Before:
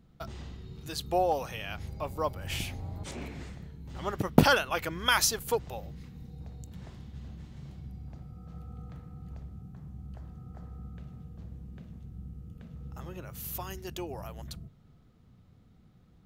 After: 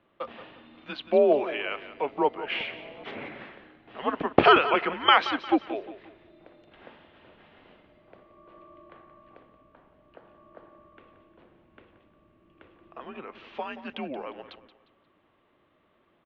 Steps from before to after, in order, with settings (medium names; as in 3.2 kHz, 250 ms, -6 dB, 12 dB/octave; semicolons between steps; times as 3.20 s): feedback delay 177 ms, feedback 36%, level -13.5 dB; mistuned SSB -140 Hz 420–3300 Hz; trim +7.5 dB